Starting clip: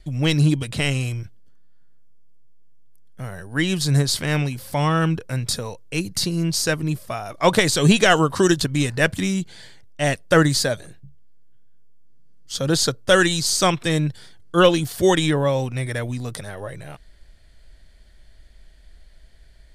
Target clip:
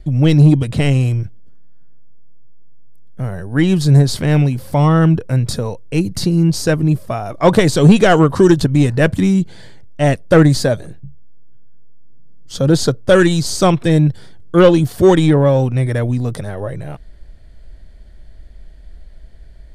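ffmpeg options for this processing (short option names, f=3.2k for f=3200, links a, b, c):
-af "tiltshelf=f=1.1k:g=6.5,acontrast=33,volume=-1dB"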